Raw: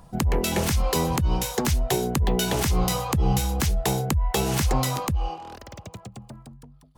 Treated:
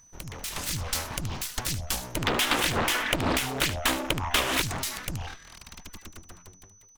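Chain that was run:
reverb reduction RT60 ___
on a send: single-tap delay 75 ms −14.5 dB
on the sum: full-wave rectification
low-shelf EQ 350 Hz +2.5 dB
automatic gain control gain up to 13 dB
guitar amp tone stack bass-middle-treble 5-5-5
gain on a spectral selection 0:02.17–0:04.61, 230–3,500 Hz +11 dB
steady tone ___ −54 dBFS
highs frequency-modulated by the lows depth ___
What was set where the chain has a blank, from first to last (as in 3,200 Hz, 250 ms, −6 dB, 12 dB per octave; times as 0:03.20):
0.62 s, 6,000 Hz, 0.91 ms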